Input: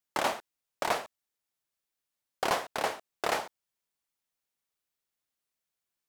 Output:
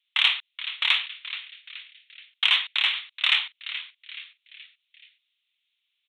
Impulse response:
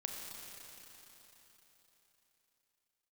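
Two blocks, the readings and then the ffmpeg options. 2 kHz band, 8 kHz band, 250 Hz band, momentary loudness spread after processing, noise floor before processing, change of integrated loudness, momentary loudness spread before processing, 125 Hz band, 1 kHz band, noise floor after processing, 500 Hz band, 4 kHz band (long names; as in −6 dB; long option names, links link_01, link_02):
+11.5 dB, below −10 dB, below −40 dB, 20 LU, below −85 dBFS, +9.0 dB, 10 LU, below −40 dB, −6.5 dB, −79 dBFS, below −20 dB, +19.0 dB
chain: -filter_complex "[0:a]asuperpass=centerf=2800:order=8:qfactor=0.53,asplit=5[link_01][link_02][link_03][link_04][link_05];[link_02]adelay=426,afreqshift=150,volume=-13.5dB[link_06];[link_03]adelay=852,afreqshift=300,volume=-20.8dB[link_07];[link_04]adelay=1278,afreqshift=450,volume=-28.2dB[link_08];[link_05]adelay=1704,afreqshift=600,volume=-35.5dB[link_09];[link_01][link_06][link_07][link_08][link_09]amix=inputs=5:normalize=0,aresample=8000,aresample=44100,aexciter=amount=6.9:drive=8.4:freq=2300,volume=1.5dB"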